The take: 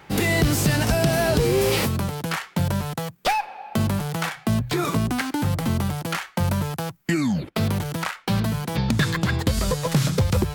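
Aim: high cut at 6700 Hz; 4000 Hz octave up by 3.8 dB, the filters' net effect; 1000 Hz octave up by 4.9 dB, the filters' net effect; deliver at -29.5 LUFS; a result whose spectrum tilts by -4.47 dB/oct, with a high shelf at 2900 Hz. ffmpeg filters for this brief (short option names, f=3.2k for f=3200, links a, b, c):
-af "lowpass=6.7k,equalizer=f=1k:t=o:g=6.5,highshelf=f=2.9k:g=-4,equalizer=f=4k:t=o:g=8,volume=-7.5dB"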